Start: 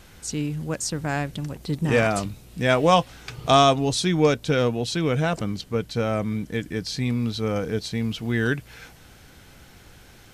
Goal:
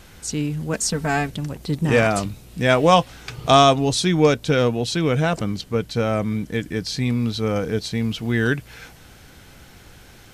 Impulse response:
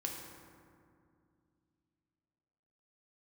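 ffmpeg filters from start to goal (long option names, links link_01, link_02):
-filter_complex "[0:a]asettb=1/sr,asplit=3[link_01][link_02][link_03];[link_01]atrim=end=0.734[link_04];[link_02]atrim=start=0.73:end=1.3,asetpts=PTS-STARTPTS,afade=type=in:duration=0.004:curve=qsin,afade=type=out:start_time=0.566:duration=0.004:curve=qsin,aecho=1:1:4.5:0.9,atrim=end_sample=25137[link_05];[link_03]atrim=start=1.296[link_06];[link_04][link_05]acrossfade=duration=0.004:curve1=hsin:curve2=qsin[link_07];[link_07][link_06]acrossfade=duration=0.004:curve1=qsin:curve2=hsin,volume=3dB"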